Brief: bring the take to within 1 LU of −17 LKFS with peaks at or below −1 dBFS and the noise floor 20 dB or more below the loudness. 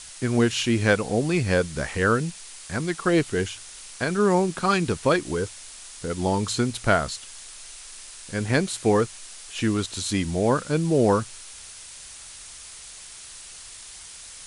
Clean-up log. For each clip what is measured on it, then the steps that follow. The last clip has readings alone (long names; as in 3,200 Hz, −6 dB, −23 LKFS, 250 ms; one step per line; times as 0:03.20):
background noise floor −43 dBFS; target noise floor −44 dBFS; integrated loudness −24.0 LKFS; sample peak −6.0 dBFS; target loudness −17.0 LKFS
→ noise reduction from a noise print 6 dB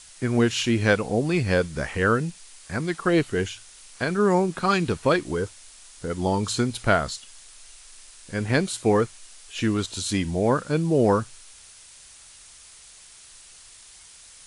background noise floor −49 dBFS; integrated loudness −24.0 LKFS; sample peak −6.0 dBFS; target loudness −17.0 LKFS
→ level +7 dB
brickwall limiter −1 dBFS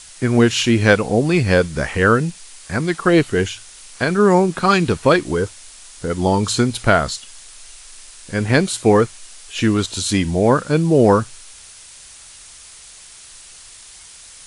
integrated loudness −17.0 LKFS; sample peak −1.0 dBFS; background noise floor −42 dBFS